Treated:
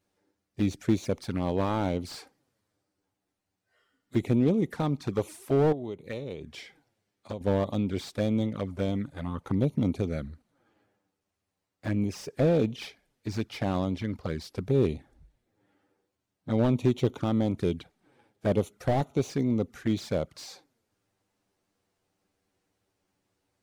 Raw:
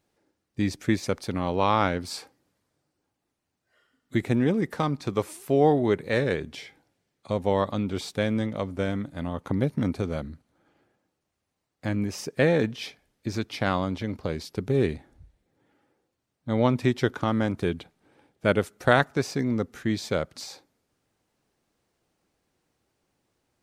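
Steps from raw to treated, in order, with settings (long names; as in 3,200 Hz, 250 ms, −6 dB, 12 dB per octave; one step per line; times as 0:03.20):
flanger swept by the level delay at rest 10.5 ms, full sweep at −23 dBFS
0:05.72–0:07.41: downward compressor 12 to 1, threshold −32 dBFS, peak gain reduction 14 dB
slew-rate limiting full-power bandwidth 50 Hz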